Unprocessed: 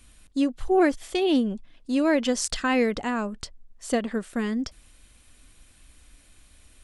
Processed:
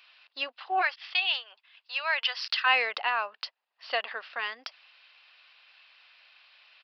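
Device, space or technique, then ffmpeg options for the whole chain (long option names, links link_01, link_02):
musical greeting card: -filter_complex "[0:a]aresample=11025,aresample=44100,highpass=frequency=760:width=0.5412,highpass=frequency=760:width=1.3066,equalizer=frequency=2700:width_type=o:width=0.23:gain=8,asplit=3[link_01][link_02][link_03];[link_01]afade=type=out:start_time=0.81:duration=0.02[link_04];[link_02]highpass=1100,afade=type=in:start_time=0.81:duration=0.02,afade=type=out:start_time=2.65:duration=0.02[link_05];[link_03]afade=type=in:start_time=2.65:duration=0.02[link_06];[link_04][link_05][link_06]amix=inputs=3:normalize=0,volume=3.5dB"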